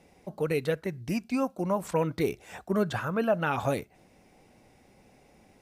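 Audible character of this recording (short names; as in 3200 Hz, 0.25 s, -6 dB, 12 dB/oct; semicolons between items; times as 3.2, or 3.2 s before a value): noise floor -61 dBFS; spectral tilt -6.0 dB/oct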